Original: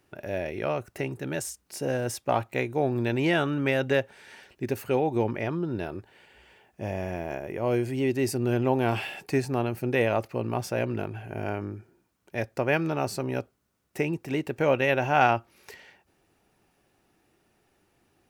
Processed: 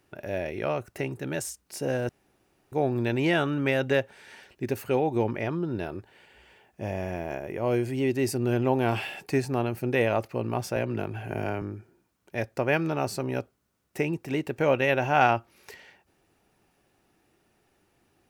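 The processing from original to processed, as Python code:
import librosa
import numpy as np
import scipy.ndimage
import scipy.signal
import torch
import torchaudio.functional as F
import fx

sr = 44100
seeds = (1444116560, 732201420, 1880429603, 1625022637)

y = fx.band_squash(x, sr, depth_pct=70, at=(10.76, 11.62))
y = fx.edit(y, sr, fx.room_tone_fill(start_s=2.09, length_s=0.63), tone=tone)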